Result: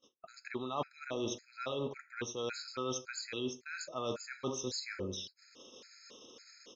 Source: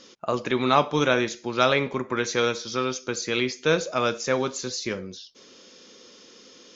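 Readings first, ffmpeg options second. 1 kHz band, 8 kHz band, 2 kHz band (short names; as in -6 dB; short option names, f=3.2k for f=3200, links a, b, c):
-17.0 dB, n/a, -16.5 dB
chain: -filter_complex "[0:a]equalizer=f=180:t=o:w=0.23:g=-11.5,asplit=2[a][b];[b]adelay=84,lowpass=f=1k:p=1,volume=-13dB,asplit=2[c][d];[d]adelay=84,lowpass=f=1k:p=1,volume=0.36,asplit=2[e][f];[f]adelay=84,lowpass=f=1k:p=1,volume=0.36,asplit=2[g][h];[h]adelay=84,lowpass=f=1k:p=1,volume=0.36[i];[a][c][e][g][i]amix=inputs=5:normalize=0,areverse,acompressor=threshold=-34dB:ratio=12,areverse,agate=range=-32dB:threshold=-49dB:ratio=16:detection=peak,afftfilt=real='re*gt(sin(2*PI*1.8*pts/sr)*(1-2*mod(floor(b*sr/1024/1300),2)),0)':imag='im*gt(sin(2*PI*1.8*pts/sr)*(1-2*mod(floor(b*sr/1024/1300),2)),0)':win_size=1024:overlap=0.75,volume=1.5dB"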